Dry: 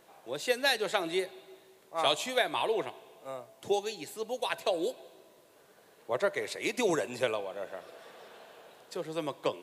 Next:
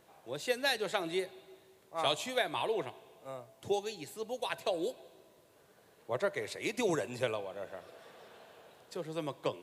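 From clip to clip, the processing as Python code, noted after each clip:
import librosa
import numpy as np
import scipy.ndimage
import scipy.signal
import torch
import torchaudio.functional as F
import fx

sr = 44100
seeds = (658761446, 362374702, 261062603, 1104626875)

y = fx.peak_eq(x, sr, hz=86.0, db=10.5, octaves=1.7)
y = F.gain(torch.from_numpy(y), -4.0).numpy()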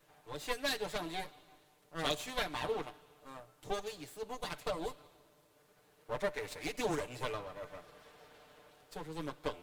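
y = fx.lower_of_two(x, sr, delay_ms=6.7)
y = F.gain(torch.from_numpy(y), -2.0).numpy()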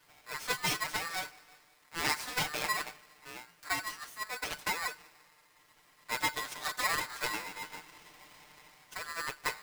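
y = x * np.sign(np.sin(2.0 * np.pi * 1500.0 * np.arange(len(x)) / sr))
y = F.gain(torch.from_numpy(y), 3.0).numpy()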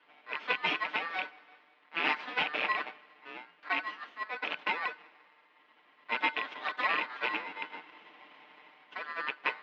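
y = fx.rattle_buzz(x, sr, strikes_db=-49.0, level_db=-21.0)
y = scipy.signal.sosfilt(scipy.signal.ellip(3, 1.0, 50, [230.0, 3100.0], 'bandpass', fs=sr, output='sos'), y)
y = F.gain(torch.from_numpy(y), 2.5).numpy()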